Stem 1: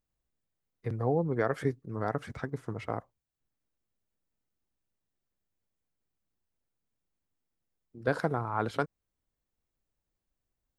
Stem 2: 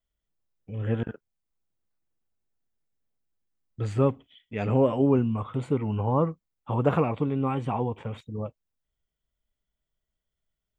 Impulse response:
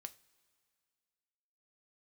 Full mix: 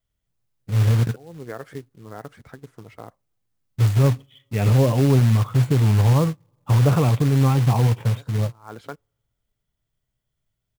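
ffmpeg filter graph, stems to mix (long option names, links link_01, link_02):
-filter_complex "[0:a]adelay=100,volume=-6dB,asplit=2[link_01][link_02];[link_02]volume=-18dB[link_03];[1:a]equalizer=frequency=120:width=2.1:gain=14.5,asoftclip=type=tanh:threshold=-6dB,volume=2.5dB,asplit=3[link_04][link_05][link_06];[link_05]volume=-14.5dB[link_07];[link_06]apad=whole_len=479958[link_08];[link_01][link_08]sidechaincompress=threshold=-50dB:ratio=8:attack=33:release=143[link_09];[2:a]atrim=start_sample=2205[link_10];[link_03][link_07]amix=inputs=2:normalize=0[link_11];[link_11][link_10]afir=irnorm=-1:irlink=0[link_12];[link_09][link_04][link_12]amix=inputs=3:normalize=0,acrusher=bits=4:mode=log:mix=0:aa=0.000001,alimiter=limit=-10.5dB:level=0:latency=1:release=39"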